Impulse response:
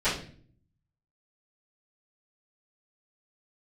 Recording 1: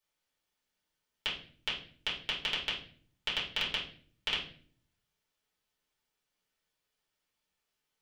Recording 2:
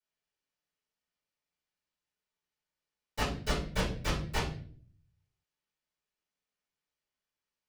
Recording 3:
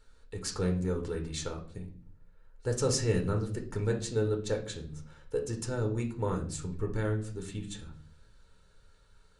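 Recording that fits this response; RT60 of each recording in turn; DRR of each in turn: 2; 0.50, 0.50, 0.50 seconds; −7.5, −17.0, 1.5 decibels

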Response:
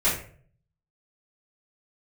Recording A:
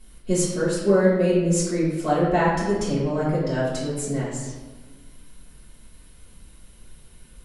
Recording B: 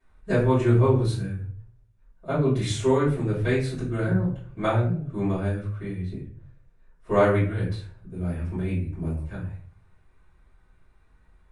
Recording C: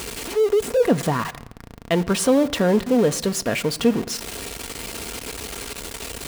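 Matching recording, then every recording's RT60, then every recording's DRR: B; 1.3 s, 0.50 s, non-exponential decay; −11.0, −12.5, 9.0 decibels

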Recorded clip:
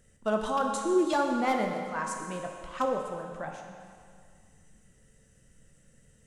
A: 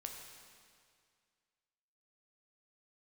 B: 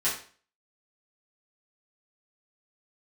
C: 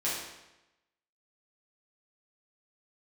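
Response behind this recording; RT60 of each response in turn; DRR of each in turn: A; 2.1, 0.45, 0.95 seconds; 1.5, −10.5, −9.5 decibels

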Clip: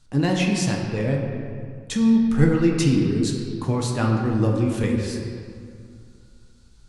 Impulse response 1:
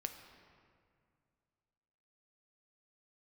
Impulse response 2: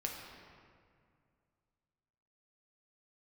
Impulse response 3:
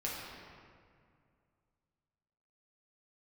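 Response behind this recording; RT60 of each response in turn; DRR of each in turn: 2; 2.2, 2.2, 2.2 seconds; 6.0, −0.5, −6.0 decibels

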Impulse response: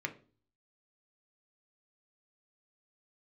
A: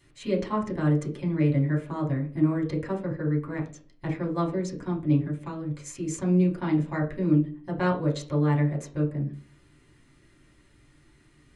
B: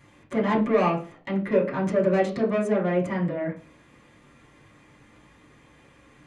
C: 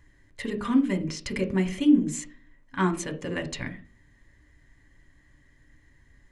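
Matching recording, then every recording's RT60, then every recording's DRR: C; 0.40, 0.40, 0.40 seconds; −2.5, −7.0, 5.0 decibels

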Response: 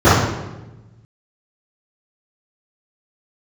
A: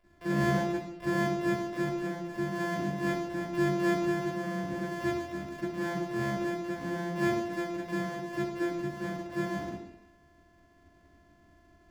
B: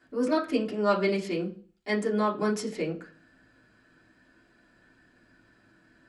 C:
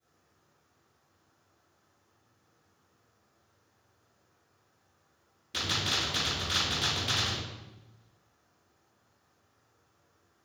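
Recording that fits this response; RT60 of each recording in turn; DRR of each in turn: C; 0.80, 0.40, 1.1 seconds; −7.5, −5.5, −15.0 decibels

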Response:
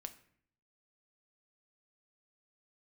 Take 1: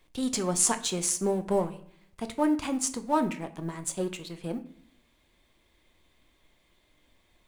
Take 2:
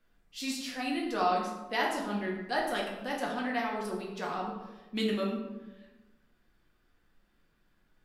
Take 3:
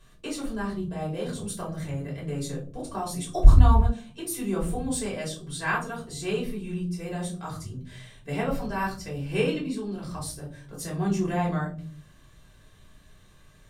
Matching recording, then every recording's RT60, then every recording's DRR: 1; 0.60, 1.2, 0.45 seconds; 8.5, −3.0, −5.5 decibels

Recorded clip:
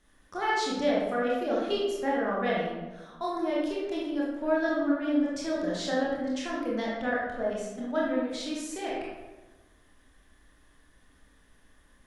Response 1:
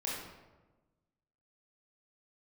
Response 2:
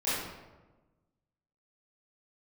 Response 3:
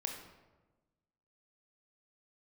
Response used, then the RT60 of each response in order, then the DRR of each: 1; 1.2, 1.2, 1.2 seconds; −5.5, −13.5, 2.0 decibels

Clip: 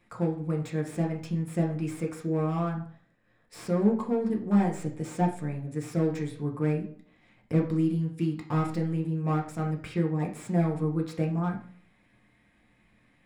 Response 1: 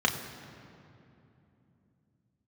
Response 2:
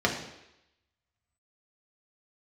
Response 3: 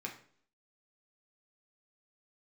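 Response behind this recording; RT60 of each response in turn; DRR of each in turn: 3; 2.9, 0.85, 0.55 seconds; 1.5, −1.0, 0.0 decibels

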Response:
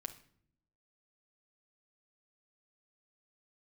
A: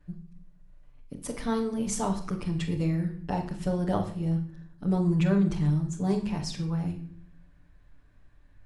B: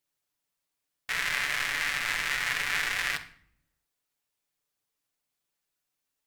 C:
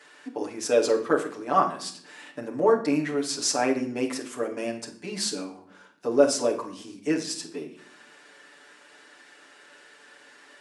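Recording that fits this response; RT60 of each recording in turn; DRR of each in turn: B; 0.60, 0.60, 0.60 seconds; −7.5, 3.5, −2.0 decibels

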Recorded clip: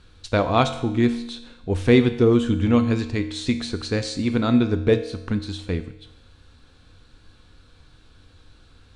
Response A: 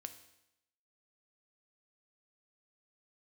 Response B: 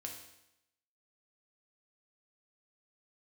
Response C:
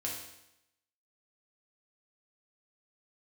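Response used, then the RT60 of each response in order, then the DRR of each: A; 0.85, 0.85, 0.85 seconds; 8.0, 0.5, −3.5 decibels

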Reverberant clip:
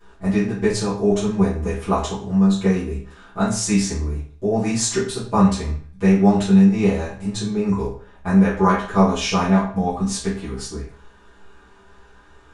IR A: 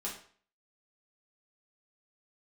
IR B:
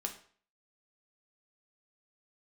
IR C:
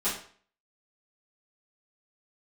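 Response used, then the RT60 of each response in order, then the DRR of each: C; 0.50, 0.50, 0.50 seconds; −5.5, 2.5, −13.5 decibels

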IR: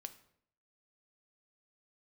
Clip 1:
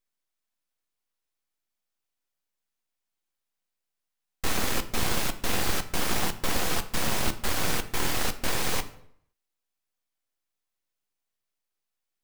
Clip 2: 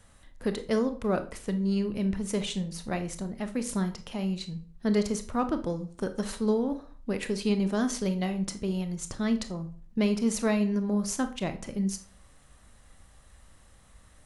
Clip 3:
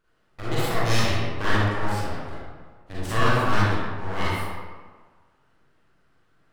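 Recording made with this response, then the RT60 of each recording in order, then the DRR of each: 1; 0.65, 0.45, 1.5 seconds; 9.0, 8.5, −10.0 decibels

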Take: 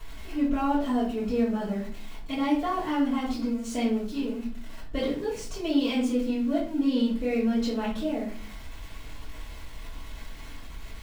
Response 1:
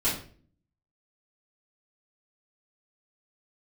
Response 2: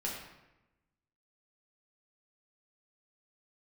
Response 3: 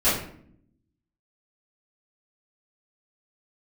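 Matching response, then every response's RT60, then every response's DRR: 1; 0.45, 0.95, 0.60 seconds; −11.5, −3.5, −15.5 decibels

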